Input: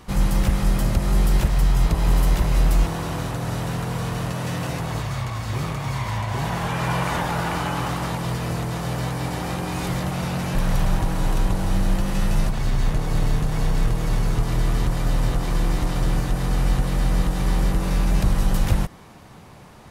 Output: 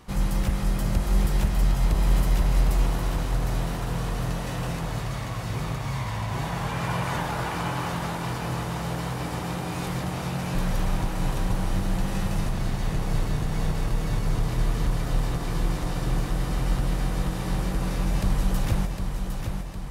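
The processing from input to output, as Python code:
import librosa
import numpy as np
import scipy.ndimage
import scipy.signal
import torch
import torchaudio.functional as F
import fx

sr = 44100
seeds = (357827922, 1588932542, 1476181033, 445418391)

y = fx.echo_feedback(x, sr, ms=758, feedback_pct=55, wet_db=-6.0)
y = y * librosa.db_to_amplitude(-5.0)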